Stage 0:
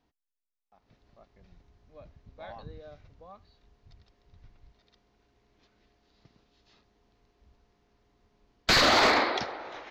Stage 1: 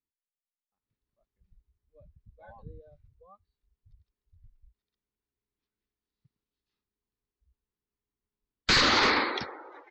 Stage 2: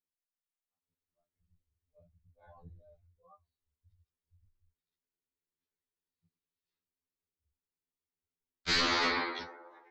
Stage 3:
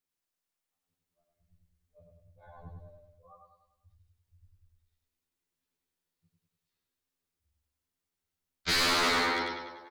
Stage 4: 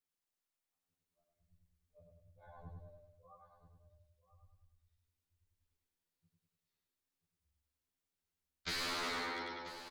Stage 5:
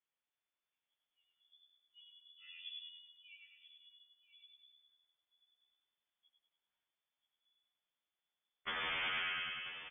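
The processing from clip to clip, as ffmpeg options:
-af "afftdn=nr=24:nf=-40,equalizer=f=670:t=o:w=0.41:g=-13"
-af "flanger=delay=5.6:depth=5.5:regen=-79:speed=0.93:shape=triangular,afftfilt=real='re*2*eq(mod(b,4),0)':imag='im*2*eq(mod(b,4),0)':win_size=2048:overlap=0.75"
-af "aecho=1:1:98|196|294|392|490|588:0.708|0.347|0.17|0.0833|0.0408|0.02,asoftclip=type=hard:threshold=0.0422,volume=1.58"
-af "acompressor=threshold=0.0158:ratio=3,aecho=1:1:985:0.2,volume=0.596"
-af "lowpass=f=3000:t=q:w=0.5098,lowpass=f=3000:t=q:w=0.6013,lowpass=f=3000:t=q:w=0.9,lowpass=f=3000:t=q:w=2.563,afreqshift=-3500,volume=1.26"

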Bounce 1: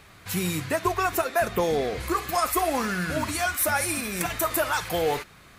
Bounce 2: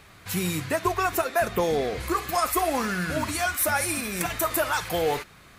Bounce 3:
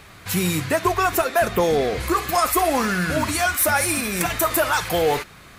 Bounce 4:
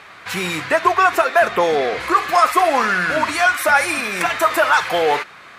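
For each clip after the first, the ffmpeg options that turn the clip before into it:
-af anull
-af "asoftclip=type=tanh:threshold=0.178,volume=2"
-af "bandpass=f=1400:t=q:w=0.64:csg=0,volume=2.37"

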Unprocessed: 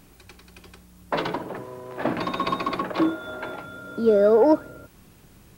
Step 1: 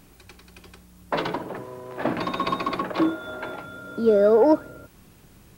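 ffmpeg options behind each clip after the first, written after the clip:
-af anull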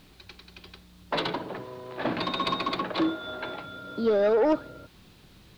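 -af "lowpass=f=4000:t=q:w=2.9,acrusher=bits=9:mix=0:aa=0.000001,aeval=exprs='0.447*(cos(1*acos(clip(val(0)/0.447,-1,1)))-cos(1*PI/2))+0.0501*(cos(5*acos(clip(val(0)/0.447,-1,1)))-cos(5*PI/2))':c=same,volume=0.473"

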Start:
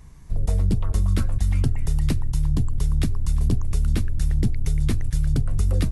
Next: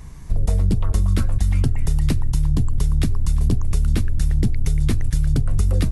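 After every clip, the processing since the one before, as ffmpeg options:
-af "acompressor=threshold=0.0708:ratio=3,volume=2.51"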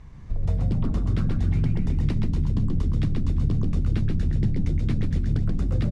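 -filter_complex "[0:a]lowpass=3800,asplit=2[s0][s1];[s1]asplit=5[s2][s3][s4][s5][s6];[s2]adelay=131,afreqshift=66,volume=0.631[s7];[s3]adelay=262,afreqshift=132,volume=0.272[s8];[s4]adelay=393,afreqshift=198,volume=0.116[s9];[s5]adelay=524,afreqshift=264,volume=0.0501[s10];[s6]adelay=655,afreqshift=330,volume=0.0216[s11];[s7][s8][s9][s10][s11]amix=inputs=5:normalize=0[s12];[s0][s12]amix=inputs=2:normalize=0,volume=0.447"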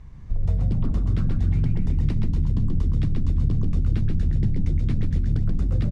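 -af "lowshelf=f=140:g=6,volume=0.708"

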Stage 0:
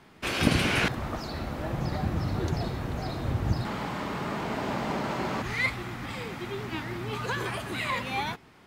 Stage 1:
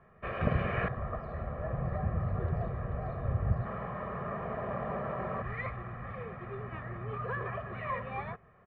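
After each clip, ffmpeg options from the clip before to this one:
-af "lowpass=f=1800:w=0.5412,lowpass=f=1800:w=1.3066,aecho=1:1:1.7:0.84,volume=0.501"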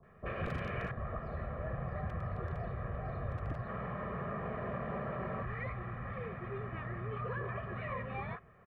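-filter_complex "[0:a]aeval=exprs='0.075*(abs(mod(val(0)/0.075+3,4)-2)-1)':c=same,acrossover=split=840[s0][s1];[s1]adelay=30[s2];[s0][s2]amix=inputs=2:normalize=0,acrossover=split=520|1100[s3][s4][s5];[s3]acompressor=threshold=0.0126:ratio=4[s6];[s4]acompressor=threshold=0.00447:ratio=4[s7];[s5]acompressor=threshold=0.00562:ratio=4[s8];[s6][s7][s8]amix=inputs=3:normalize=0,volume=1.12"

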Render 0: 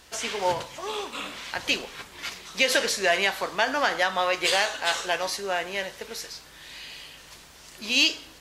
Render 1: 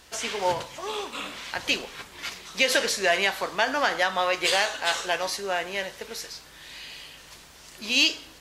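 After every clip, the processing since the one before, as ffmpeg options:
-af anull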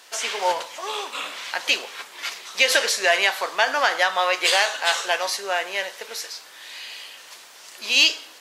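-af "highpass=530,volume=1.68"

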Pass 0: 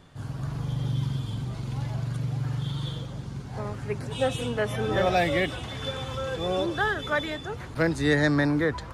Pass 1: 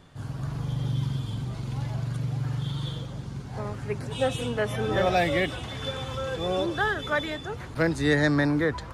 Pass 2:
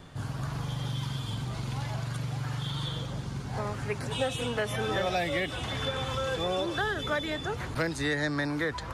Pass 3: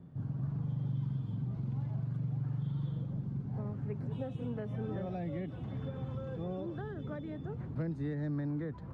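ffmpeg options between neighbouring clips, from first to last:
-af anull
-filter_complex "[0:a]acrossover=split=650|2600[s0][s1][s2];[s0]acompressor=threshold=0.0141:ratio=4[s3];[s1]acompressor=threshold=0.0126:ratio=4[s4];[s2]acompressor=threshold=0.00708:ratio=4[s5];[s3][s4][s5]amix=inputs=3:normalize=0,volume=1.68"
-af "bandpass=f=170:t=q:w=1.5:csg=0,volume=1.12"

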